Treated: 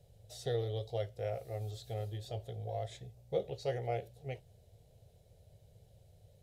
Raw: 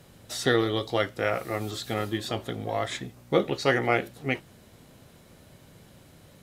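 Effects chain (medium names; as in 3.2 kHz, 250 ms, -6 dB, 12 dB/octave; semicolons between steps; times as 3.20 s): FFT filter 110 Hz 0 dB, 290 Hz -27 dB, 440 Hz -6 dB, 720 Hz -7 dB, 1.1 kHz -28 dB, 3.7 kHz -13 dB; trim -3 dB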